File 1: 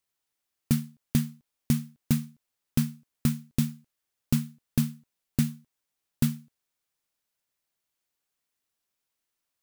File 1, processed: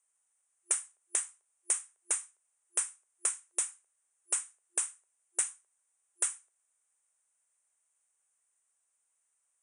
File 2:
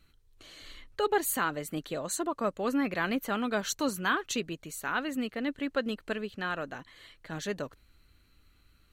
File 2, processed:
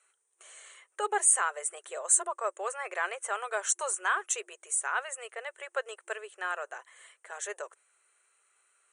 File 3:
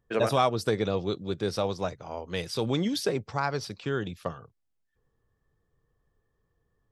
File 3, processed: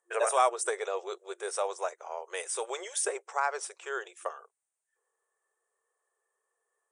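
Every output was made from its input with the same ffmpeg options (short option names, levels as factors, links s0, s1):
-filter_complex "[0:a]afftfilt=real='re*between(b*sr/4096,350,9800)':imag='im*between(b*sr/4096,350,9800)':win_size=4096:overlap=0.75,acrossover=split=530 2600:gain=0.158 1 0.178[s0][s1][s2];[s0][s1][s2]amix=inputs=3:normalize=0,aexciter=amount=14.9:drive=9.5:freq=7100,volume=1.19"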